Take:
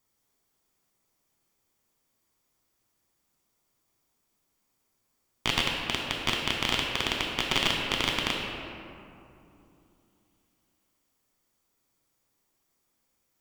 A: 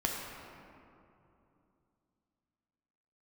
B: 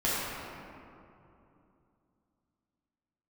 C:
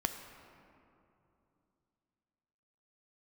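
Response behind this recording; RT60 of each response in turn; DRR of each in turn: A; 2.8 s, 2.8 s, 2.8 s; -0.5 dB, -8.5 dB, 7.0 dB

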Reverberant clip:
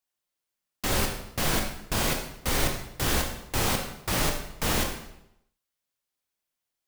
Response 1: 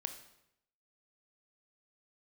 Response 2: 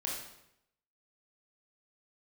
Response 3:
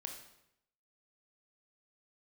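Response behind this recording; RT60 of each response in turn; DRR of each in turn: 3; 0.80 s, 0.80 s, 0.80 s; 7.0 dB, -3.5 dB, 2.5 dB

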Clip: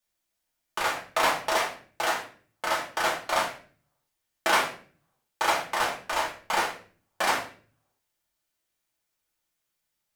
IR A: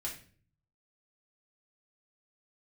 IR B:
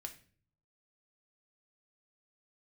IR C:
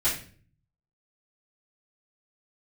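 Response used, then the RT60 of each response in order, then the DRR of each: A; 0.45 s, 0.45 s, 0.45 s; -3.5 dB, 4.5 dB, -13.0 dB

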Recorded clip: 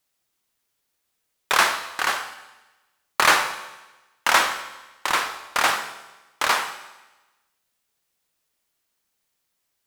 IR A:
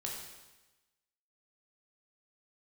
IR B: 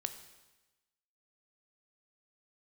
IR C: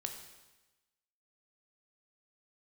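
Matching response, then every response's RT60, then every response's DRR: B; 1.1 s, 1.1 s, 1.1 s; -2.5 dB, 8.5 dB, 4.0 dB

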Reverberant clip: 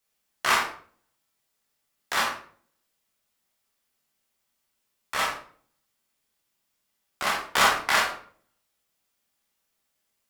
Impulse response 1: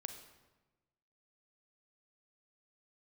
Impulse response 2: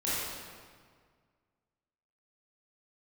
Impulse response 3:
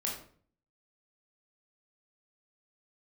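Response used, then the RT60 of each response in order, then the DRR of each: 3; 1.2 s, 1.8 s, 0.50 s; 7.0 dB, -10.5 dB, -3.0 dB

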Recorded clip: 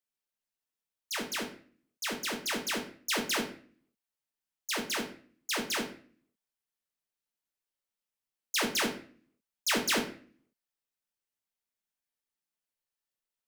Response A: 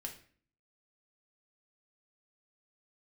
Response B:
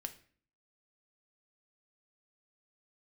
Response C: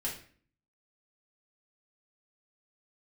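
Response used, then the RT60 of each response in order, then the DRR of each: A; 0.45 s, 0.45 s, 0.45 s; 1.5 dB, 7.0 dB, -5.0 dB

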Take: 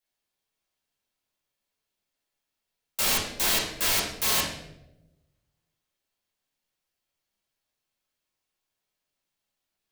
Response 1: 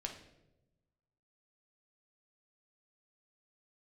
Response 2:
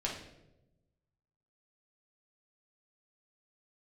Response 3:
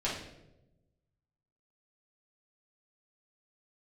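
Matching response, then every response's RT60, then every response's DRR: 3; 0.95 s, 0.95 s, 0.95 s; 1.5 dB, -3.5 dB, -8.0 dB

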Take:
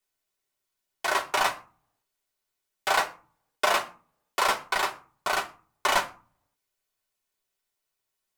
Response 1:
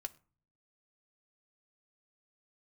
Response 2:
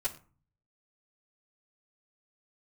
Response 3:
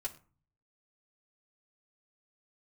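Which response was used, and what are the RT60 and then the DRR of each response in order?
3; no single decay rate, no single decay rate, no single decay rate; 6.0 dB, -9.5 dB, -3.5 dB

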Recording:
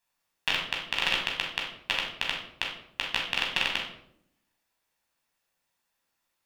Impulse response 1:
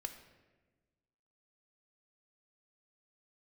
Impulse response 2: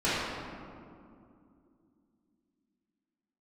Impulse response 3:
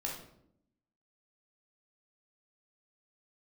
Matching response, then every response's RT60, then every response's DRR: 3; 1.3 s, 2.5 s, 0.70 s; 6.5 dB, -12.5 dB, -2.5 dB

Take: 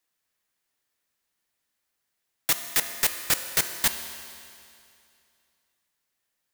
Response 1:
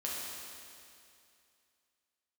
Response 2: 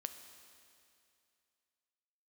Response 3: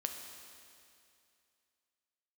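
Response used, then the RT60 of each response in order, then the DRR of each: 2; 2.5 s, 2.5 s, 2.5 s; -6.0 dB, 7.5 dB, 3.5 dB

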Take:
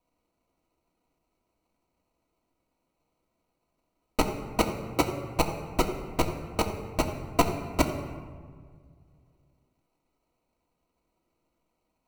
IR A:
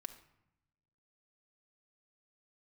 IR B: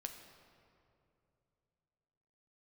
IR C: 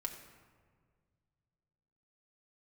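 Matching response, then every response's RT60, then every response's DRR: C; 0.80 s, 2.7 s, 1.8 s; 5.5 dB, 4.0 dB, 1.0 dB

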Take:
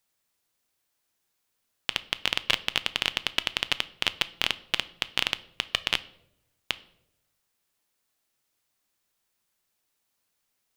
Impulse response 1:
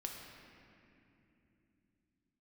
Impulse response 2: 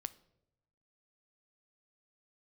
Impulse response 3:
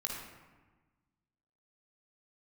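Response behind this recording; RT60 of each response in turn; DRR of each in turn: 2; 2.9 s, 0.90 s, 1.3 s; 0.5 dB, 14.0 dB, -3.0 dB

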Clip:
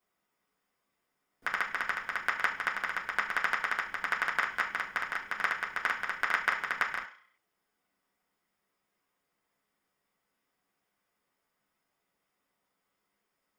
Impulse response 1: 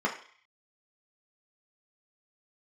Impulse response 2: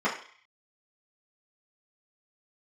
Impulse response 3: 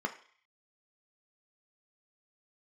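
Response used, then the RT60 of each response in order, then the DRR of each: 1; 0.50 s, 0.50 s, 0.50 s; -3.0 dB, -10.0 dB, 3.5 dB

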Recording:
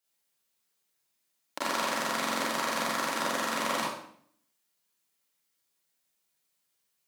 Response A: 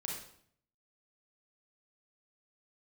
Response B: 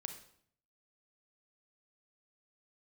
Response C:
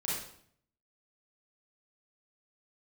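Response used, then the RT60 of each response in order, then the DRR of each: C; 0.60 s, 0.60 s, 0.60 s; -2.0 dB, 6.5 dB, -7.0 dB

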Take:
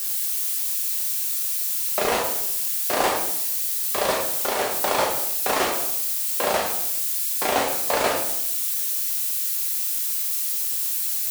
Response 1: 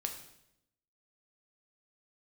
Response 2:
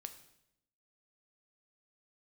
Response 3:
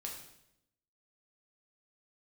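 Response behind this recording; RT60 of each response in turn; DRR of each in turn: 3; 0.80 s, 0.80 s, 0.80 s; 3.5 dB, 8.0 dB, -1.0 dB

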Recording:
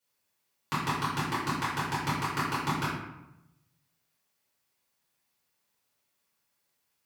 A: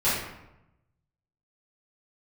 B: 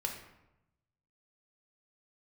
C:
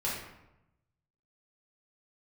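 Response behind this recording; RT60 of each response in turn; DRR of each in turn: A; 0.90 s, 0.90 s, 0.90 s; -13.0 dB, 1.5 dB, -7.0 dB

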